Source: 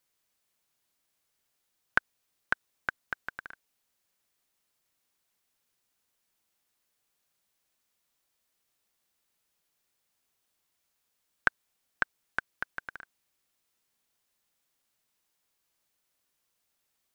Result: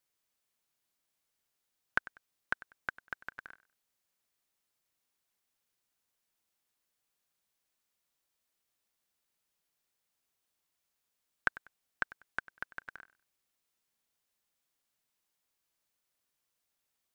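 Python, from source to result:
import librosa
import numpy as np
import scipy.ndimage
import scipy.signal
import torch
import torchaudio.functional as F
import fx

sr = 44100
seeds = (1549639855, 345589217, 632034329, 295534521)

y = fx.echo_feedback(x, sr, ms=97, feedback_pct=26, wet_db=-19.0)
y = y * librosa.db_to_amplitude(-5.0)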